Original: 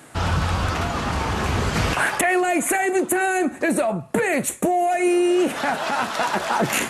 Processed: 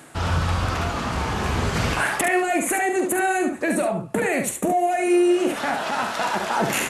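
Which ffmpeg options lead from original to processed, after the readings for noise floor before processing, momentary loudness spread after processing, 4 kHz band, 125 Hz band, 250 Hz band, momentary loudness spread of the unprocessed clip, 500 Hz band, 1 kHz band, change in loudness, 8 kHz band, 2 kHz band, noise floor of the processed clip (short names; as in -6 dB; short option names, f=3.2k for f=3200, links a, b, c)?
-38 dBFS, 5 LU, -1.5 dB, -0.5 dB, -1.0 dB, 5 LU, -1.0 dB, -1.0 dB, -1.0 dB, -1.5 dB, -1.5 dB, -34 dBFS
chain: -af "aecho=1:1:46|71:0.316|0.473,areverse,acompressor=mode=upward:threshold=-22dB:ratio=2.5,areverse,volume=-2.5dB"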